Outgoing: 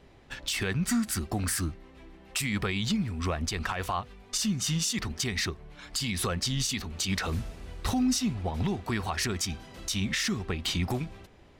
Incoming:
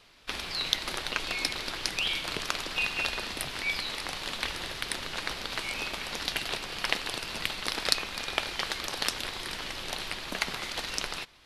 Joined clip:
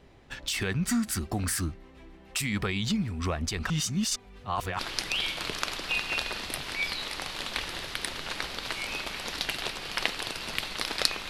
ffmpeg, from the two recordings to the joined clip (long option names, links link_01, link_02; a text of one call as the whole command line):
ffmpeg -i cue0.wav -i cue1.wav -filter_complex "[0:a]apad=whole_dur=11.29,atrim=end=11.29,asplit=2[link_01][link_02];[link_01]atrim=end=3.702[link_03];[link_02]atrim=start=3.698:end=4.792,asetpts=PTS-STARTPTS,areverse[link_04];[1:a]atrim=start=1.658:end=8.16[link_05];[link_03][link_04]acrossfade=duration=0.004:curve1=hsin:curve2=hsin[link_06];[link_06][link_05]acrossfade=duration=0.004:curve1=hsin:curve2=hsin" out.wav